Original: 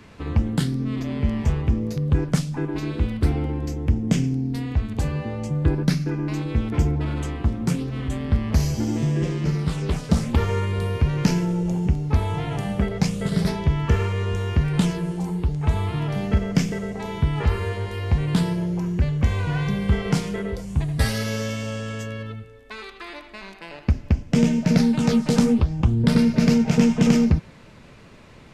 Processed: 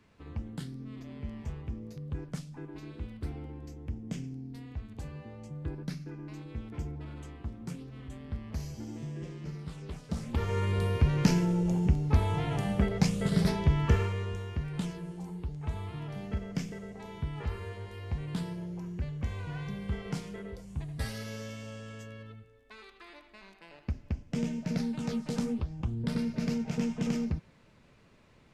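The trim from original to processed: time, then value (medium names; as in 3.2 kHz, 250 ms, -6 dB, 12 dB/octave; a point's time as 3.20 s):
10.05 s -17 dB
10.69 s -4.5 dB
13.88 s -4.5 dB
14.51 s -14 dB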